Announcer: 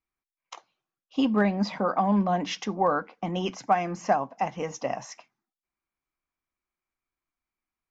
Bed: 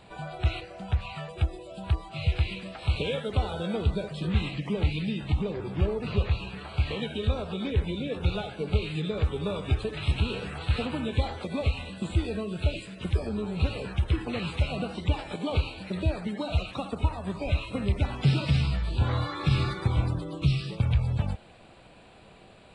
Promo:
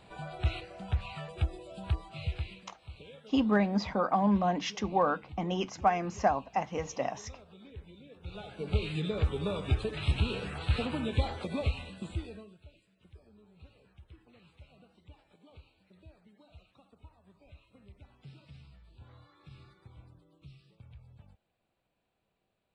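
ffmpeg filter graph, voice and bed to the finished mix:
-filter_complex "[0:a]adelay=2150,volume=-3dB[a];[1:a]volume=14.5dB,afade=t=out:st=1.84:d=0.94:silence=0.141254,afade=t=in:st=8.23:d=0.62:silence=0.11885,afade=t=out:st=11.47:d=1.12:silence=0.0501187[b];[a][b]amix=inputs=2:normalize=0"

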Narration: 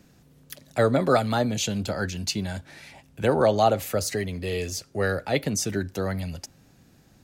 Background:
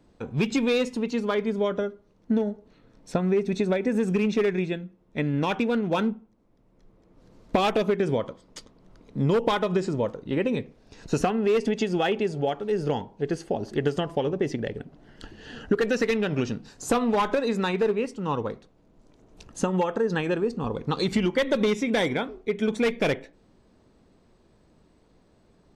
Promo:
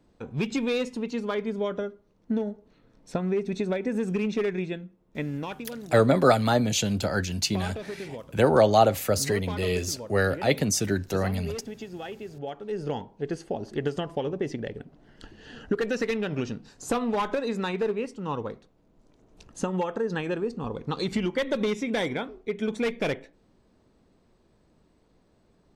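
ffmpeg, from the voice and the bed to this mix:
-filter_complex "[0:a]adelay=5150,volume=1.5dB[a];[1:a]volume=6.5dB,afade=t=out:st=5.13:d=0.5:silence=0.316228,afade=t=in:st=12.25:d=0.75:silence=0.316228[b];[a][b]amix=inputs=2:normalize=0"

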